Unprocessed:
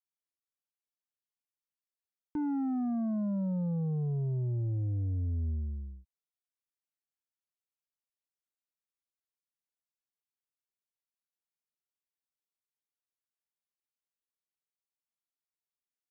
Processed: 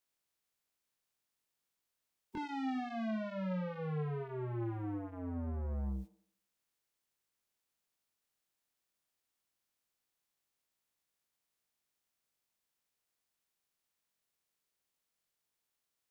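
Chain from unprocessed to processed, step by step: spectral limiter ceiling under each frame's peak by 17 dB; dynamic EQ 110 Hz, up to -5 dB, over -47 dBFS, Q 5.5; in parallel at +3 dB: negative-ratio compressor -36 dBFS, ratio -0.5; on the sum: limiter -26.5 dBFS, peak gain reduction 6.5 dB; soft clip -35 dBFS, distortion -12 dB; chorus 0.18 Hz, delay 15.5 ms, depth 7.5 ms; on a send: band-limited delay 79 ms, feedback 42%, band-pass 490 Hz, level -13 dB; on the sum: gain +1.5 dB

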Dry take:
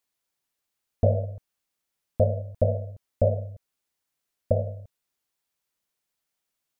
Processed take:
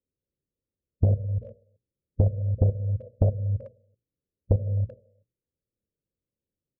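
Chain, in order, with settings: bell 66 Hz +8 dB 3 oct; level quantiser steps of 18 dB; harmonic-percussive split harmonic +6 dB; steep low-pass 560 Hz 72 dB/oct; notches 60/120/180/240/300/360/420 Hz; speakerphone echo 0.38 s, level -24 dB; compressor 16:1, threshold -25 dBFS, peak gain reduction 14.5 dB; Doppler distortion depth 0.54 ms; gain +7.5 dB

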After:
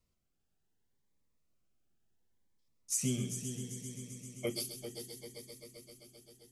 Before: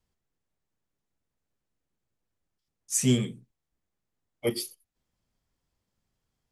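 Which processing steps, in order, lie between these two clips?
compressor, threshold -31 dBFS, peak gain reduction 13 dB; multi-head echo 0.131 s, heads first and third, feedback 74%, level -10 dB; cascading phaser rising 0.7 Hz

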